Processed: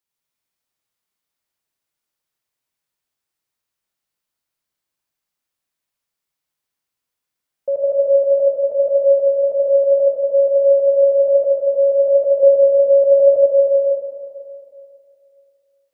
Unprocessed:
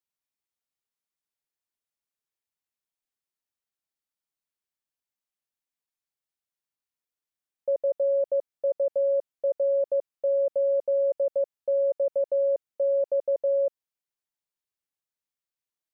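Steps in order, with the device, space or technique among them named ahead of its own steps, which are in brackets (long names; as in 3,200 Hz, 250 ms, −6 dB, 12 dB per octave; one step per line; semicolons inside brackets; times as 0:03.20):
stairwell (convolution reverb RT60 2.5 s, pre-delay 58 ms, DRR −4 dB)
0:12.43–0:13.46: low-shelf EQ 450 Hz +7.5 dB
level +5 dB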